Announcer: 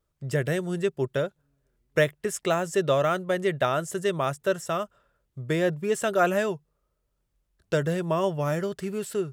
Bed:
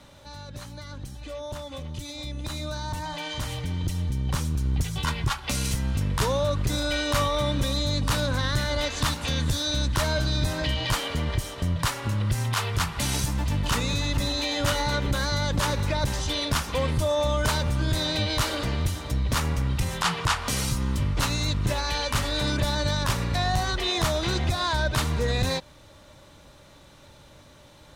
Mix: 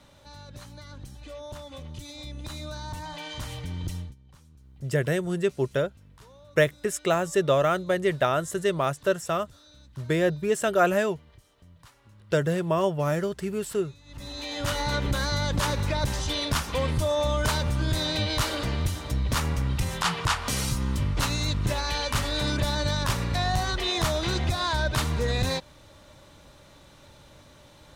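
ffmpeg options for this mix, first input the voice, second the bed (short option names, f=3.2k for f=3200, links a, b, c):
-filter_complex "[0:a]adelay=4600,volume=1dB[a];[1:a]volume=22dB,afade=t=out:st=3.95:d=0.2:silence=0.0707946,afade=t=in:st=14.05:d=0.91:silence=0.0473151[b];[a][b]amix=inputs=2:normalize=0"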